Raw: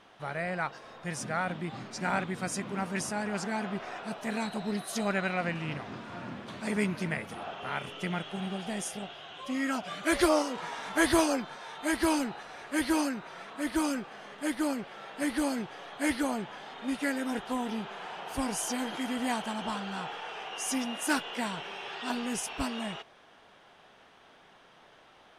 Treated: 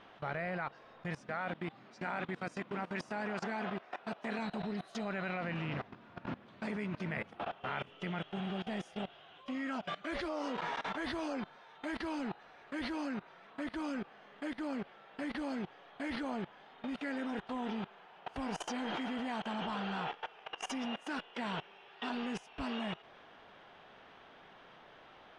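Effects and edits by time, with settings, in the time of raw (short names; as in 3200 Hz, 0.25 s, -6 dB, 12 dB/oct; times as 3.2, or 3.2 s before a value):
1.21–4.39 HPF 250 Hz 6 dB/oct
whole clip: LPF 3700 Hz 12 dB/oct; level quantiser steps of 20 dB; gain +2.5 dB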